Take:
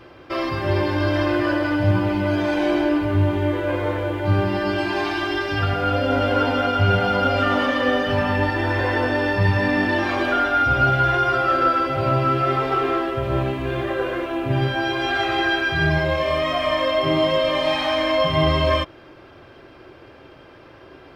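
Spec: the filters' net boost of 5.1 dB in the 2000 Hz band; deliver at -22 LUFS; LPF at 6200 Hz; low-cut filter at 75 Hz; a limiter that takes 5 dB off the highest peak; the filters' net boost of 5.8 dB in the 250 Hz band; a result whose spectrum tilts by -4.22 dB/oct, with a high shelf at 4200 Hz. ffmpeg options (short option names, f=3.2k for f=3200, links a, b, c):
-af "highpass=75,lowpass=6.2k,equalizer=f=250:t=o:g=7.5,equalizer=f=2k:t=o:g=8,highshelf=f=4.2k:g=-6,volume=-4.5dB,alimiter=limit=-12.5dB:level=0:latency=1"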